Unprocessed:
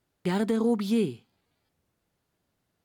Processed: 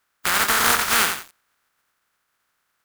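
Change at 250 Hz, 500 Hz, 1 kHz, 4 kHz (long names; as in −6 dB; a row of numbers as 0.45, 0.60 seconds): −11.0, −4.5, +16.5, +19.0 decibels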